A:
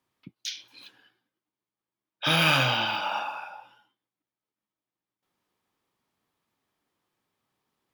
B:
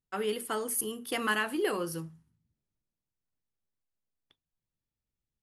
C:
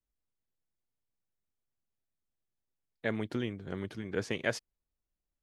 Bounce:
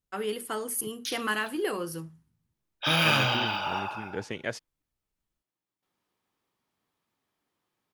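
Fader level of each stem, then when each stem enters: -1.5 dB, 0.0 dB, -1.5 dB; 0.60 s, 0.00 s, 0.00 s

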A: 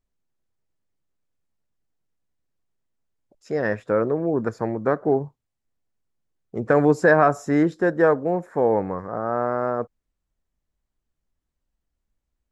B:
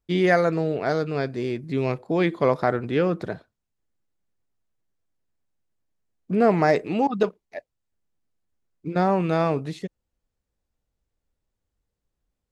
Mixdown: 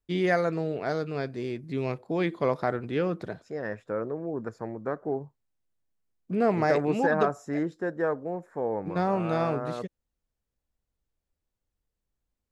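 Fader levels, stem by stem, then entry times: -10.0 dB, -5.5 dB; 0.00 s, 0.00 s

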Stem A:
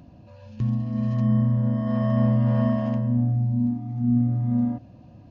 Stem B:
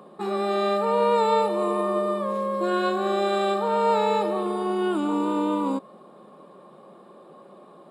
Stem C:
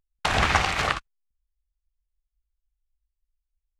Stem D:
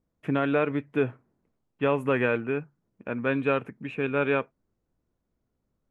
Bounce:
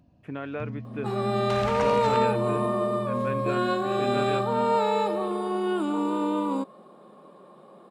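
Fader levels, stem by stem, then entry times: -12.0 dB, -2.0 dB, -13.0 dB, -9.5 dB; 0.00 s, 0.85 s, 1.25 s, 0.00 s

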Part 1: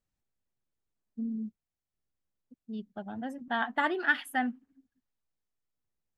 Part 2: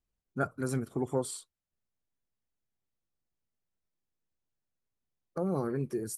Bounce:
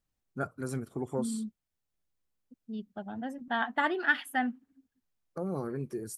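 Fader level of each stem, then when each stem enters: 0.0 dB, -3.0 dB; 0.00 s, 0.00 s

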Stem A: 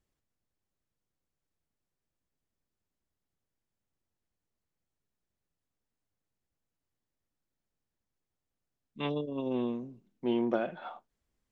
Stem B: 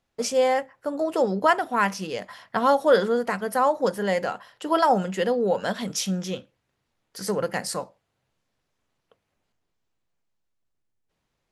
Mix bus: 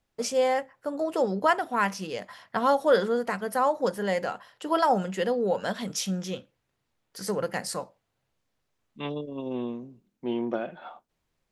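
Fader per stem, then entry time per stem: 0.0 dB, -3.0 dB; 0.00 s, 0.00 s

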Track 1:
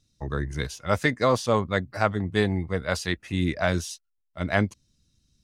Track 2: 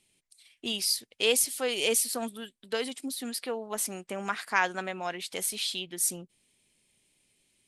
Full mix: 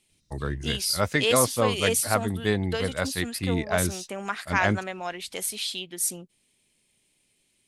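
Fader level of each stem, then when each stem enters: -1.5 dB, +1.0 dB; 0.10 s, 0.00 s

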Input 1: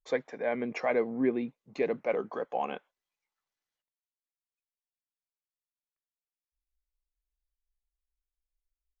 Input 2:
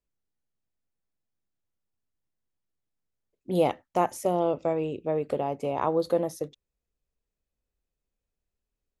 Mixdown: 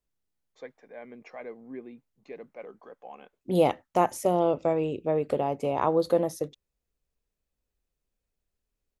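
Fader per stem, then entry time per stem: -13.0 dB, +1.5 dB; 0.50 s, 0.00 s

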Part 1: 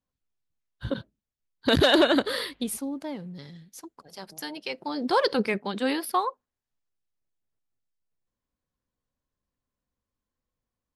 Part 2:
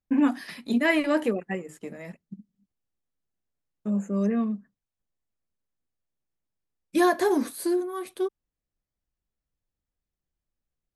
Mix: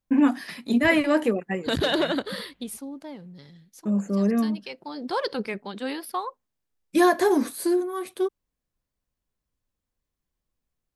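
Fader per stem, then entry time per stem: -4.5 dB, +2.5 dB; 0.00 s, 0.00 s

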